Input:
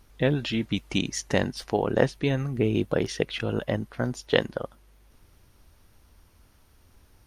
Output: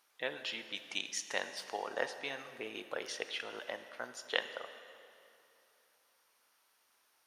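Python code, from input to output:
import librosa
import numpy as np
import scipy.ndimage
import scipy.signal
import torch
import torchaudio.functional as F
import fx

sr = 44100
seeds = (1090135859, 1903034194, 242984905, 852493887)

y = scipy.signal.sosfilt(scipy.signal.butter(2, 820.0, 'highpass', fs=sr, output='sos'), x)
y = fx.rev_plate(y, sr, seeds[0], rt60_s=2.8, hf_ratio=0.8, predelay_ms=0, drr_db=9.0)
y = y * librosa.db_to_amplitude(-6.5)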